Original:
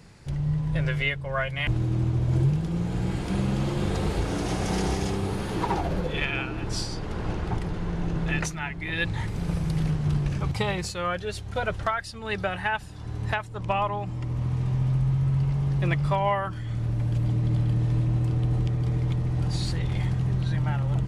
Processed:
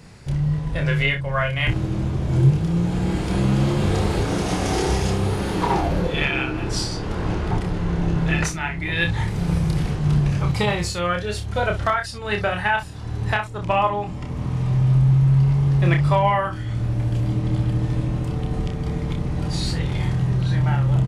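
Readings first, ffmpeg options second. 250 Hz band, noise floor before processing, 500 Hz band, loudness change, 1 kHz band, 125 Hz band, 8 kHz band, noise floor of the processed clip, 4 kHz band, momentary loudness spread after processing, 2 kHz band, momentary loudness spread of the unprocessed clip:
+6.0 dB, −37 dBFS, +6.0 dB, +5.5 dB, +6.0 dB, +5.0 dB, +6.0 dB, −30 dBFS, +6.0 dB, 8 LU, +6.0 dB, 6 LU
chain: -af "aecho=1:1:29|61:0.596|0.224,volume=4.5dB"

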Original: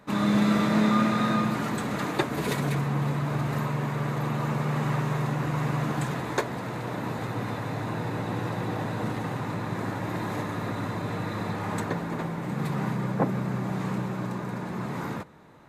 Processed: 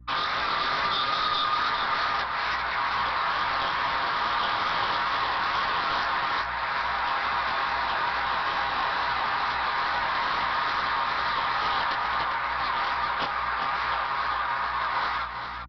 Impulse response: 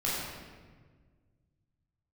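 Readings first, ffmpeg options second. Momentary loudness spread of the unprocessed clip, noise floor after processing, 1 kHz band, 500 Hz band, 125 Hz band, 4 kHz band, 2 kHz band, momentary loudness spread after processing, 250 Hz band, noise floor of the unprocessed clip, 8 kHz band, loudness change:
9 LU, −30 dBFS, +8.5 dB, −5.0 dB, −19.0 dB, +11.5 dB, +9.0 dB, 2 LU, −19.0 dB, −34 dBFS, below −10 dB, +2.5 dB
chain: -filter_complex "[0:a]highpass=frequency=1000:width=0.5412,highpass=frequency=1000:width=1.3066,anlmdn=0.0631,aecho=1:1:7.4:0.98,alimiter=limit=-23dB:level=0:latency=1:release=409,acrossover=split=1700|3600[link_01][link_02][link_03];[link_02]acompressor=threshold=-54dB:ratio=4[link_04];[link_03]acompressor=threshold=-52dB:ratio=4[link_05];[link_01][link_04][link_05]amix=inputs=3:normalize=0,aeval=exprs='val(0)+0.000708*(sin(2*PI*60*n/s)+sin(2*PI*2*60*n/s)/2+sin(2*PI*3*60*n/s)/3+sin(2*PI*4*60*n/s)/4+sin(2*PI*5*60*n/s)/5)':channel_layout=same,aresample=11025,aeval=exprs='0.0668*sin(PI/2*3.55*val(0)/0.0668)':channel_layout=same,aresample=44100,flanger=delay=17.5:depth=6.5:speed=2.3,aecho=1:1:401:0.473,volume=2.5dB"

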